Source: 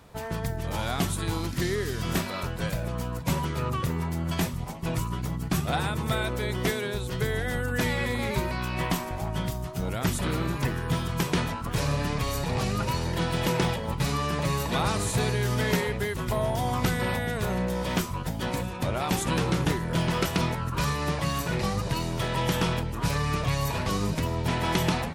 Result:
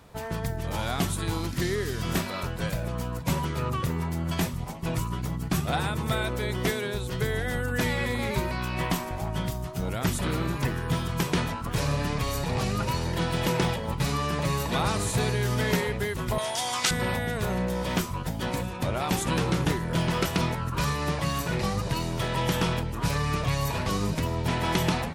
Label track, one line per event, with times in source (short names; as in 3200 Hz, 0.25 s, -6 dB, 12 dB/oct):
16.380000	16.910000	weighting filter ITU-R 468